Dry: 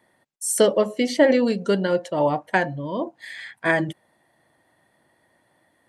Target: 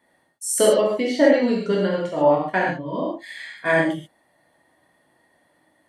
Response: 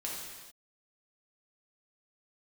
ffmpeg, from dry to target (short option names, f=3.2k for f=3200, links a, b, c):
-filter_complex "[0:a]asettb=1/sr,asplit=3[a][b][c];[a]atrim=end=0.814[d];[b]atrim=start=0.81:end=2.95,asetpts=PTS-STARTPTS,afade=t=in:d=0.004:c=qsin,afade=t=out:st=2.136:d=0.004:c=qsin,highshelf=f=6k:g=-10.5[e];[c]atrim=start=2.946[f];[d][e]acrossfade=d=0.004:c1=hsin:c2=qsin[g];[g][f]acrossfade=d=0.004:c1=qsin:c2=hsin[h];[1:a]atrim=start_sample=2205,afade=t=out:st=0.2:d=0.01,atrim=end_sample=9261[i];[h][i]afir=irnorm=-1:irlink=0"